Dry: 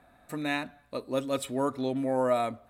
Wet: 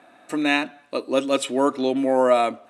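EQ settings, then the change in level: speaker cabinet 280–9900 Hz, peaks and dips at 320 Hz +7 dB, 2800 Hz +7 dB, 5900 Hz +4 dB; +8.5 dB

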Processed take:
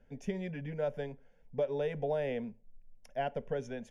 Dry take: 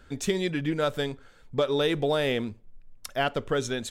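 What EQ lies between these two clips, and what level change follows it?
dynamic EQ 1300 Hz, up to +5 dB, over -43 dBFS, Q 1.2; running mean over 11 samples; fixed phaser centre 330 Hz, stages 6; -6.0 dB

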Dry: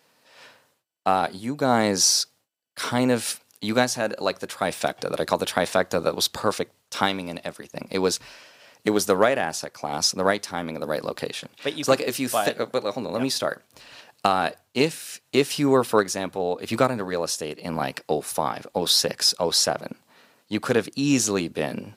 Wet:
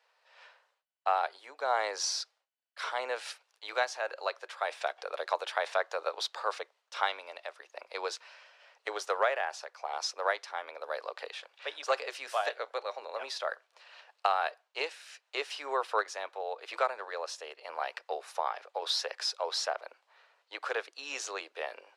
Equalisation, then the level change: Bessel high-pass 860 Hz, order 8; tape spacing loss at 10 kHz 22 dB; -1.5 dB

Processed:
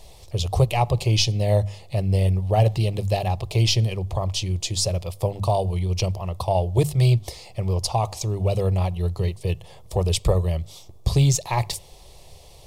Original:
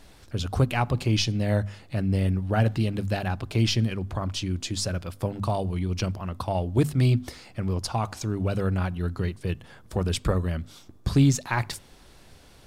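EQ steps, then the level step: fixed phaser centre 620 Hz, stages 4; +7.0 dB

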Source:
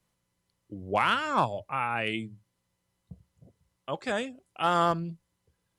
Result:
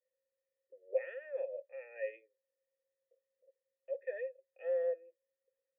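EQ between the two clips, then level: vocal tract filter e; vowel filter e; elliptic high-pass 370 Hz, stop band 40 dB; +5.0 dB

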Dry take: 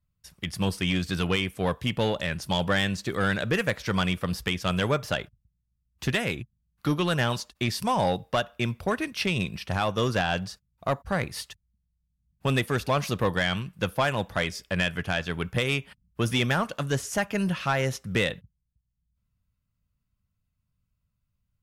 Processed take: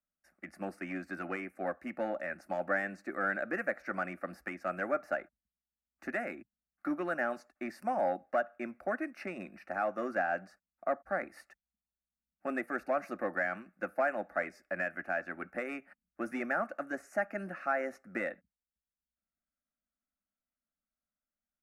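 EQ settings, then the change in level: three-band isolator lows -22 dB, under 260 Hz, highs -20 dB, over 2100 Hz; bell 94 Hz -7 dB 0.36 oct; fixed phaser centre 660 Hz, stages 8; -2.0 dB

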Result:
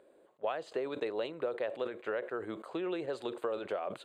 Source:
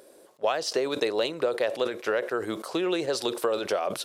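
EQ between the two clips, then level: running mean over 8 samples; -8.5 dB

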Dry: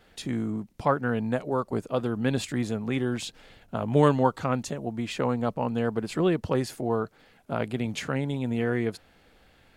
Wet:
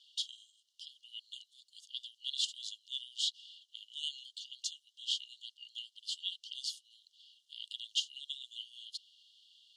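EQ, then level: brick-wall FIR high-pass 2800 Hz; air absorption 71 m; high shelf 7300 Hz -11.5 dB; +9.5 dB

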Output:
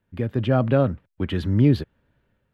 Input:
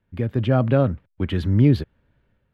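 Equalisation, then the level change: low shelf 93 Hz -6 dB; notch 2200 Hz, Q 29; 0.0 dB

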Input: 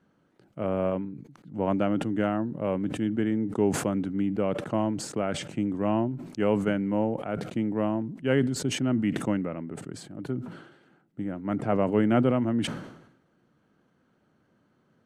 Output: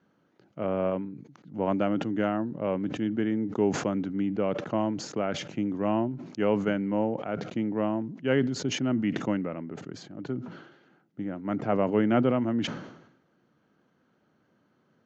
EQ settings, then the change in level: HPF 130 Hz 6 dB/oct; steep low-pass 7000 Hz 96 dB/oct; 0.0 dB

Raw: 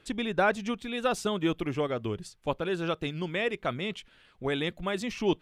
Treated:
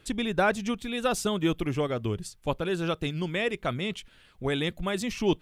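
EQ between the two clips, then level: low shelf 160 Hz +8 dB; high shelf 6500 Hz +10.5 dB; 0.0 dB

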